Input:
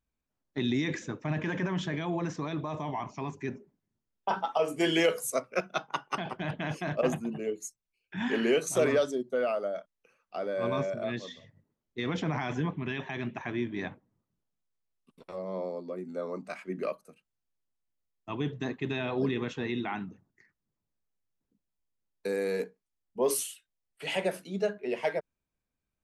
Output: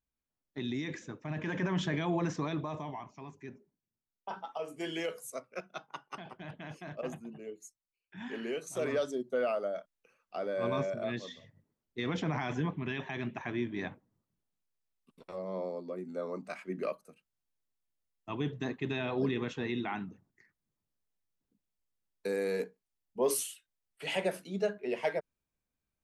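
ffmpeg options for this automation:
-af "volume=2.99,afade=t=in:st=1.29:d=0.52:silence=0.421697,afade=t=out:st=2.41:d=0.67:silence=0.266073,afade=t=in:st=8.7:d=0.61:silence=0.354813"

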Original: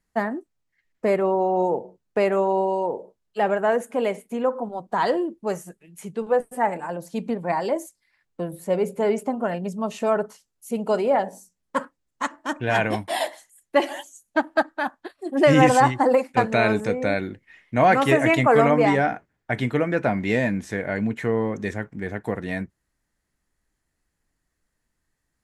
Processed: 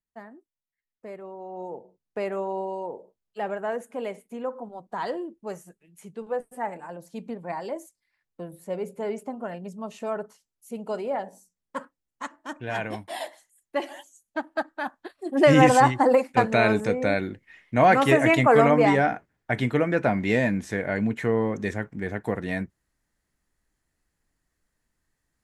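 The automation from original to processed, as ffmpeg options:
-af "volume=0.944,afade=t=in:st=1.37:d=0.91:silence=0.298538,afade=t=in:st=14.51:d=0.92:silence=0.398107"

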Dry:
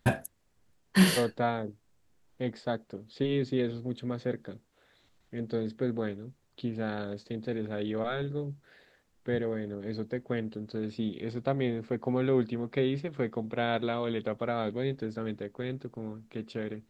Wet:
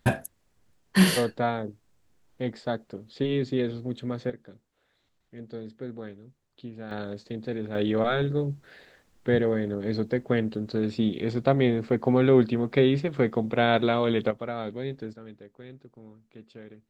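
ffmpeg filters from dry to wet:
-af "asetnsamples=n=441:p=0,asendcmd='4.3 volume volume -6.5dB;6.91 volume volume 1.5dB;7.75 volume volume 7.5dB;14.31 volume volume -1.5dB;15.13 volume volume -10dB',volume=1.33"

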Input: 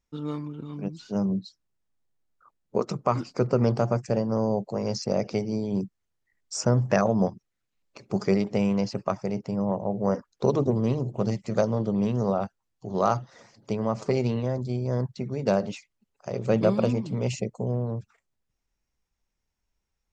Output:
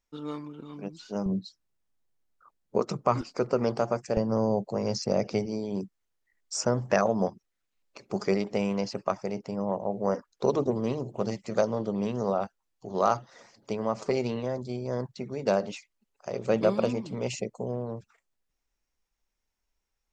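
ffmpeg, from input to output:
-af "asetnsamples=n=441:p=0,asendcmd='1.26 equalizer g -3;3.21 equalizer g -12;4.17 equalizer g -2;5.46 equalizer g -9.5',equalizer=f=110:t=o:w=2:g=-12"

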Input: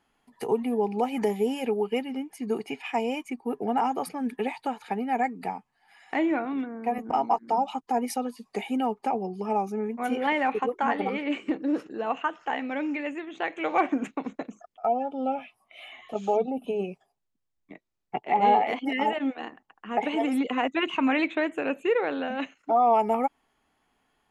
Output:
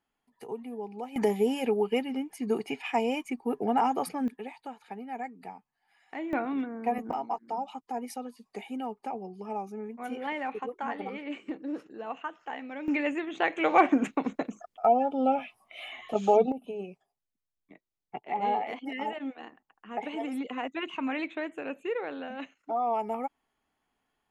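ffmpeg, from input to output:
-af "asetnsamples=n=441:p=0,asendcmd='1.16 volume volume 0dB;4.28 volume volume -11dB;6.33 volume volume -1dB;7.13 volume volume -8.5dB;12.88 volume volume 3dB;16.52 volume volume -8dB',volume=0.251"

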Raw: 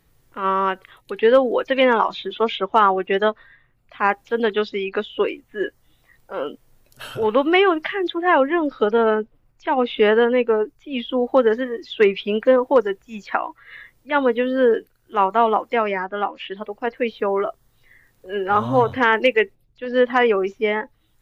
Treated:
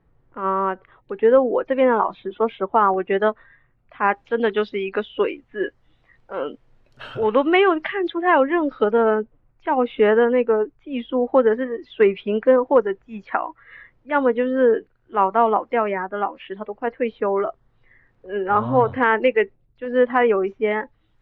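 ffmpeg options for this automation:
-af "asetnsamples=n=441:p=0,asendcmd='2.94 lowpass f 2000;4.08 lowpass f 2900;8.84 lowpass f 1900;20.71 lowpass f 2800',lowpass=1300"

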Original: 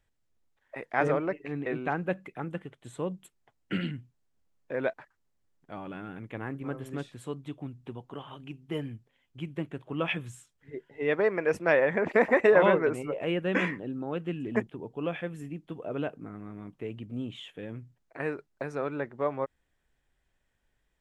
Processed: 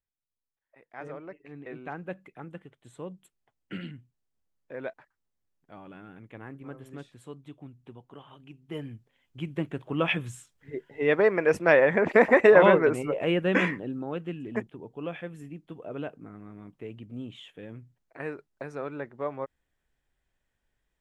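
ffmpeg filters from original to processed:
-af "volume=1.58,afade=t=in:st=0.77:d=1.38:silence=0.237137,afade=t=in:st=8.5:d=1.21:silence=0.298538,afade=t=out:st=13.47:d=0.95:silence=0.446684"

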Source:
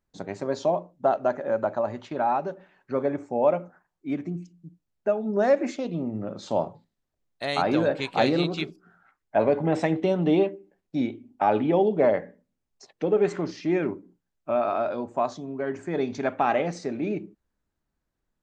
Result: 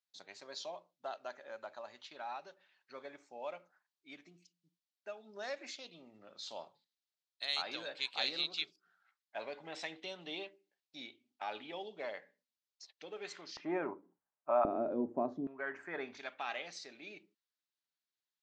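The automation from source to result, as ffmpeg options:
-af "asetnsamples=n=441:p=0,asendcmd='13.57 bandpass f 970;14.65 bandpass f 300;15.47 bandpass f 1600;16.17 bandpass f 4000',bandpass=f=4200:t=q:w=1.8:csg=0"

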